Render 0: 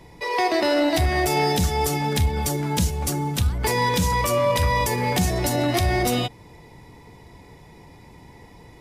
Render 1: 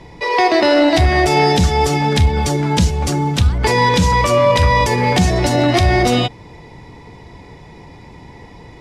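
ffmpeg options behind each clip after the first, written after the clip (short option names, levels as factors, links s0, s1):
-af "lowpass=6000,volume=2.51"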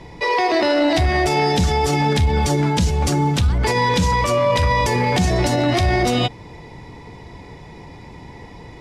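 -af "alimiter=limit=0.316:level=0:latency=1:release=31"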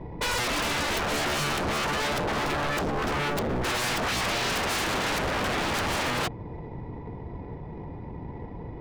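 -af "adynamicsmooth=sensitivity=1:basefreq=910,aeval=exprs='0.0631*(abs(mod(val(0)/0.0631+3,4)-2)-1)':c=same,volume=1.19"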